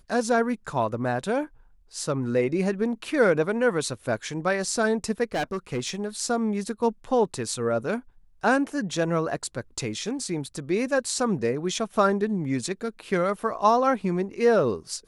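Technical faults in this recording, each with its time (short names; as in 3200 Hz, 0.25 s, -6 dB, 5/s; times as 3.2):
5.34–6.01 clipped -23 dBFS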